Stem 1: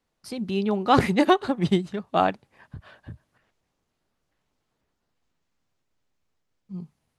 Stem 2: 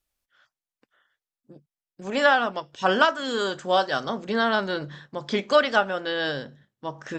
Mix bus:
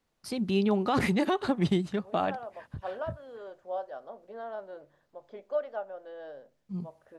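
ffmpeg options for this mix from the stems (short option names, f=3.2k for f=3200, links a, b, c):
-filter_complex "[0:a]volume=0dB[a];[1:a]bandpass=f=610:t=q:w=2.9:csg=0,volume=-10dB[b];[a][b]amix=inputs=2:normalize=0,alimiter=limit=-17dB:level=0:latency=1:release=57"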